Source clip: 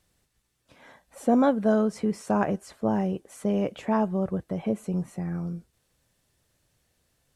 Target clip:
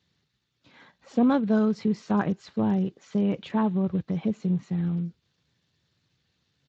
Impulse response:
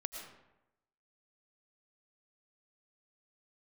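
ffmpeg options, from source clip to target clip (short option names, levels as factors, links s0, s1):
-af "atempo=1.1,equalizer=f=160:t=o:w=0.67:g=4,equalizer=f=630:t=o:w=0.67:g=-8,equalizer=f=4000:t=o:w=0.67:g=6" -ar 16000 -c:a libspeex -b:a 21k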